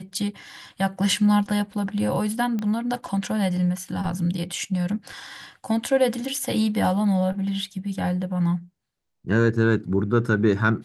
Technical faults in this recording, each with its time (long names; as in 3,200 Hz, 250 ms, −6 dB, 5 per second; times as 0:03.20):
0:02.59: click −17 dBFS